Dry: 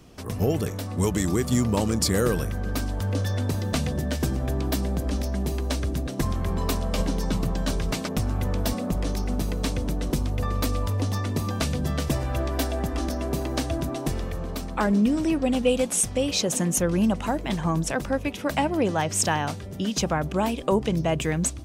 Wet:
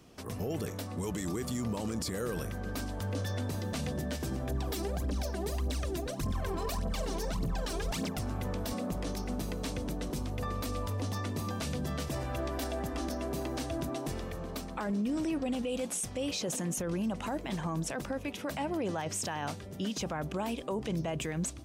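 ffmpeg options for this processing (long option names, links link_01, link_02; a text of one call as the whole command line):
ffmpeg -i in.wav -filter_complex "[0:a]asettb=1/sr,asplit=3[link_01][link_02][link_03];[link_01]atrim=end=4.514[link_04];[link_02]atrim=start=4.51:end=8.19,asetpts=PTS-STARTPTS,afade=type=in:duration=0.004:curve=qsin,afade=type=out:start_time=3.676:duration=0.004:curve=qsin,aphaser=in_gain=1:out_gain=1:delay=3.1:decay=0.74:speed=1.7:type=triangular[link_05];[link_03]atrim=start=8.186[link_06];[link_04][link_05]acrossfade=duration=0.004:curve1=hsin:curve2=qsin[link_07];[link_07][link_06]acrossfade=duration=0.004:curve1=qsin:curve2=hsin,lowshelf=frequency=92:gain=-8.5,alimiter=limit=-21dB:level=0:latency=1:release=15,volume=-5dB" out.wav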